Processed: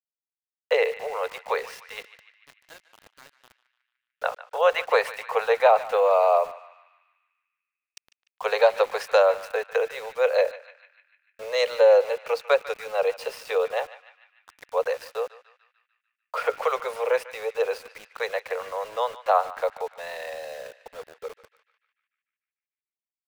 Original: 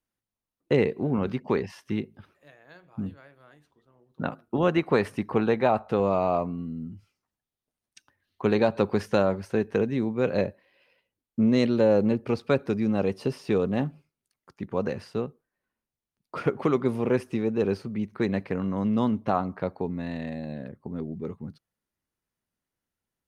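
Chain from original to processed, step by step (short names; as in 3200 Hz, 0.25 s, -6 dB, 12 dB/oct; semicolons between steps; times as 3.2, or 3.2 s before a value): steep high-pass 460 Hz 96 dB/oct; sample gate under -47 dBFS; on a send: narrowing echo 0.148 s, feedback 64%, band-pass 2200 Hz, level -13.5 dB; on the sum: gain +6 dB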